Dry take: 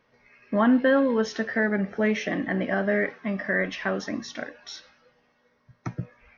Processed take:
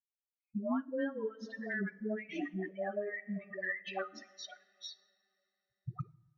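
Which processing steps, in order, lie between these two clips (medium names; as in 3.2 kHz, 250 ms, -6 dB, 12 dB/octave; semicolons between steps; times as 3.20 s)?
expander on every frequency bin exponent 3; Bessel high-pass 170 Hz; distance through air 180 m; two-slope reverb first 0.79 s, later 3.4 s, from -19 dB, DRR 17.5 dB; dynamic bell 280 Hz, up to +6 dB, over -43 dBFS, Q 2; 2.64–5.94 s: comb 1.6 ms, depth 86%; compression 5:1, threshold -40 dBFS, peak gain reduction 22 dB; phase dispersion highs, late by 148 ms, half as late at 480 Hz; trim +4.5 dB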